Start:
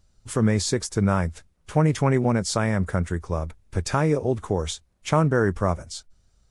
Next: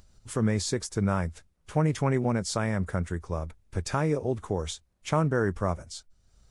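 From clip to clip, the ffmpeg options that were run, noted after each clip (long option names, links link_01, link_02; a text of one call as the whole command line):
ffmpeg -i in.wav -af "acompressor=mode=upward:threshold=-43dB:ratio=2.5,volume=-5dB" out.wav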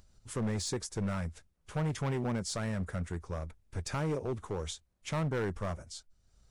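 ffmpeg -i in.wav -af "asoftclip=type=hard:threshold=-24dB,volume=-4.5dB" out.wav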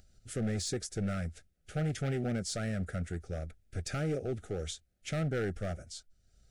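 ffmpeg -i in.wav -af "asuperstop=centerf=1000:order=8:qfactor=2.1" out.wav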